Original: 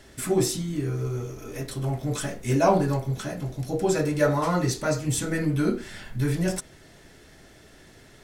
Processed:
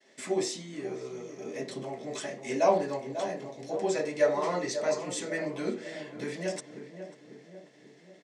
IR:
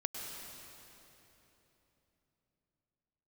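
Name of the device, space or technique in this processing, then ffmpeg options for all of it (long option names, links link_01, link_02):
television speaker: -filter_complex "[0:a]agate=range=-33dB:threshold=-46dB:ratio=3:detection=peak,asettb=1/sr,asplit=3[link_01][link_02][link_03];[link_01]atrim=end=1.404[link_04];[link_02]atrim=start=1.4:end=1.83,asetpts=PTS-STARTPTS,afade=type=in:duration=0.004:curve=qsin,afade=type=out:start_time=0.426:duration=0.004:curve=qsin,lowshelf=frequency=450:gain=9.5[link_05];[link_03]atrim=start=1.826[link_06];[link_04][link_05]acrossfade=duration=0.004:curve1=hsin:curve2=qsin[link_07];[link_07][link_06]acrossfade=duration=0.004:curve1=qsin:curve2=hsin,highpass=frequency=230:width=0.5412,highpass=frequency=230:width=1.3066,equalizer=frequency=300:width_type=q:width=4:gain=-6,equalizer=frequency=590:width_type=q:width=4:gain=4,equalizer=frequency=1400:width_type=q:width=4:gain=-9,equalizer=frequency=2000:width_type=q:width=4:gain=6,lowpass=frequency=7600:width=0.5412,lowpass=frequency=7600:width=1.3066,asplit=2[link_08][link_09];[link_09]adelay=543,lowpass=frequency=1100:poles=1,volume=-9dB,asplit=2[link_10][link_11];[link_11]adelay=543,lowpass=frequency=1100:poles=1,volume=0.55,asplit=2[link_12][link_13];[link_13]adelay=543,lowpass=frequency=1100:poles=1,volume=0.55,asplit=2[link_14][link_15];[link_15]adelay=543,lowpass=frequency=1100:poles=1,volume=0.55,asplit=2[link_16][link_17];[link_17]adelay=543,lowpass=frequency=1100:poles=1,volume=0.55,asplit=2[link_18][link_19];[link_19]adelay=543,lowpass=frequency=1100:poles=1,volume=0.55[link_20];[link_08][link_10][link_12][link_14][link_16][link_18][link_20]amix=inputs=7:normalize=0,volume=-4.5dB"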